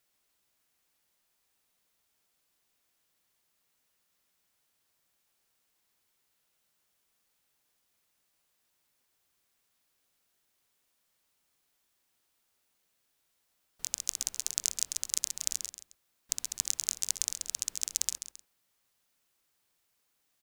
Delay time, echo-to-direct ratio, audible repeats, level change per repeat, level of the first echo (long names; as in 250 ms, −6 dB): 134 ms, −9.5 dB, 2, −9.0 dB, −10.0 dB